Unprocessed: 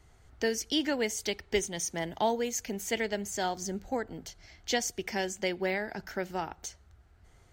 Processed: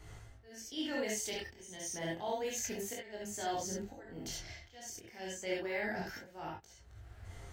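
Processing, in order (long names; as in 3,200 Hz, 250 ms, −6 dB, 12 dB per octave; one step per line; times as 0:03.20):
reversed playback
downward compressor 8 to 1, threshold −43 dBFS, peak gain reduction 20 dB
reversed playback
volume swells 485 ms
reverb whose tail is shaped and stops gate 90 ms rising, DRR −2.5 dB
chorus effect 0.3 Hz, delay 19 ms, depth 7.7 ms
level +8 dB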